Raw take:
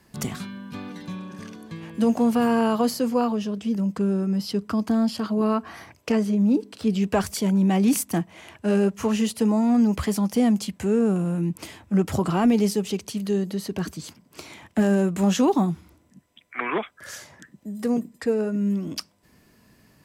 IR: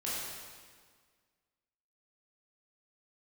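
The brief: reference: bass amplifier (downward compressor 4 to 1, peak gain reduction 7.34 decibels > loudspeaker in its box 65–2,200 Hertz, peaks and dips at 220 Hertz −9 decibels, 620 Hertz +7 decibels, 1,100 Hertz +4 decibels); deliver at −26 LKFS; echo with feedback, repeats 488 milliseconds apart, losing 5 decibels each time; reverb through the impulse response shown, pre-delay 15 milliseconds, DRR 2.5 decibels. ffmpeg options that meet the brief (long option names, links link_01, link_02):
-filter_complex "[0:a]aecho=1:1:488|976|1464|1952|2440|2928|3416:0.562|0.315|0.176|0.0988|0.0553|0.031|0.0173,asplit=2[link_01][link_02];[1:a]atrim=start_sample=2205,adelay=15[link_03];[link_02][link_03]afir=irnorm=-1:irlink=0,volume=-7dB[link_04];[link_01][link_04]amix=inputs=2:normalize=0,acompressor=threshold=-19dB:ratio=4,highpass=frequency=65:width=0.5412,highpass=frequency=65:width=1.3066,equalizer=frequency=220:width_type=q:width=4:gain=-9,equalizer=frequency=620:width_type=q:width=4:gain=7,equalizer=frequency=1100:width_type=q:width=4:gain=4,lowpass=frequency=2200:width=0.5412,lowpass=frequency=2200:width=1.3066,volume=0.5dB"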